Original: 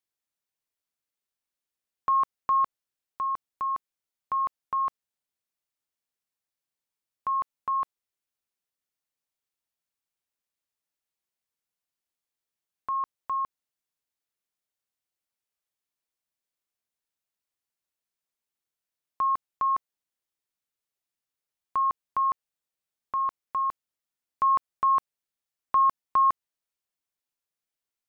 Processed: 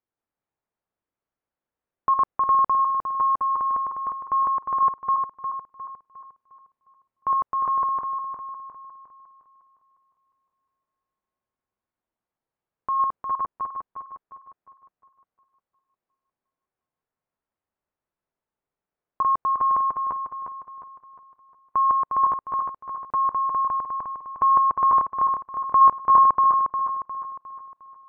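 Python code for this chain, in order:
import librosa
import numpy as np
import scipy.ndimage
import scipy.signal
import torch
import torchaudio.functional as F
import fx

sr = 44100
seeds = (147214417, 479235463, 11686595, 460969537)

y = fx.reverse_delay_fb(x, sr, ms=178, feedback_pct=66, wet_db=-2)
y = scipy.signal.sosfilt(scipy.signal.butter(2, 1200.0, 'lowpass', fs=sr, output='sos'), y)
y = fx.transient(y, sr, attack_db=-3, sustain_db=2, at=(12.96, 13.36))
y = F.gain(torch.from_numpy(y), 6.5).numpy()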